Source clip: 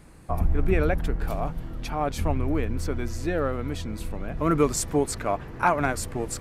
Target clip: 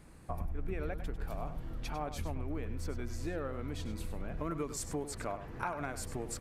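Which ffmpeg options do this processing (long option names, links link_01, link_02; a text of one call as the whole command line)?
ffmpeg -i in.wav -filter_complex "[0:a]acompressor=threshold=-29dB:ratio=4,asplit=2[link_01][link_02];[link_02]aecho=0:1:99:0.282[link_03];[link_01][link_03]amix=inputs=2:normalize=0,volume=-6dB" out.wav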